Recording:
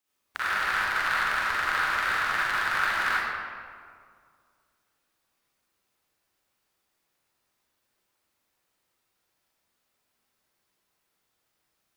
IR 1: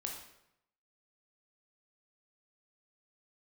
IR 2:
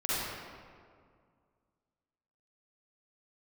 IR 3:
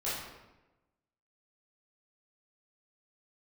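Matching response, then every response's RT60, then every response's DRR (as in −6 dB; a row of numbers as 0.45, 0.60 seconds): 2; 0.80, 2.1, 1.1 seconds; 0.5, −10.5, −10.5 decibels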